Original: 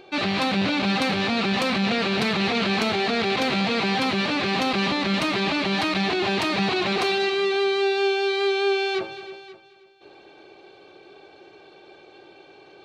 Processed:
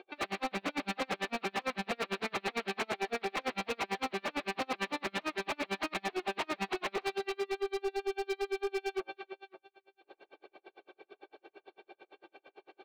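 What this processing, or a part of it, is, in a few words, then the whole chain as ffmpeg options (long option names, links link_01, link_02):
helicopter radio: -af "highpass=350,lowpass=2800,aeval=exprs='val(0)*pow(10,-40*(0.5-0.5*cos(2*PI*8.9*n/s))/20)':channel_layout=same,asoftclip=type=hard:threshold=-28dB"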